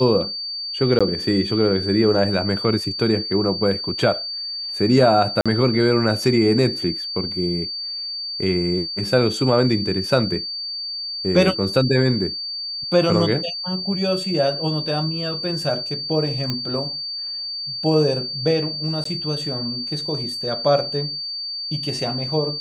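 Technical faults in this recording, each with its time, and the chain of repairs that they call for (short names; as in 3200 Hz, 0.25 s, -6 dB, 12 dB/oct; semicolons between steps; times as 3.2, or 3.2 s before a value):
tone 4600 Hz -26 dBFS
0.99–1.01 gap 16 ms
5.41–5.46 gap 46 ms
16.5 pop -10 dBFS
19.04–19.05 gap 14 ms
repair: de-click; notch 4600 Hz, Q 30; interpolate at 0.99, 16 ms; interpolate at 5.41, 46 ms; interpolate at 19.04, 14 ms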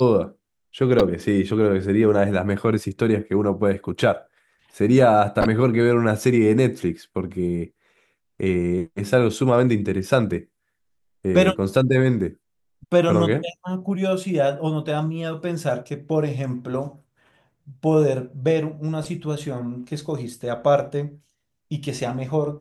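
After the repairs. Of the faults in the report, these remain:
none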